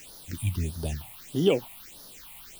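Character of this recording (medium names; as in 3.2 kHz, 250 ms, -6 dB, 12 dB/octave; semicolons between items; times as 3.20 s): a quantiser's noise floor 8-bit, dither triangular; phasing stages 6, 1.6 Hz, lowest notch 390–2400 Hz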